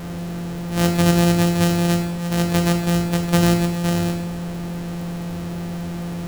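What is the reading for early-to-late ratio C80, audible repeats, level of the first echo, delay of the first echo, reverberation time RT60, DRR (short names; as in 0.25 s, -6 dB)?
9.5 dB, none, none, none, 0.85 s, 4.0 dB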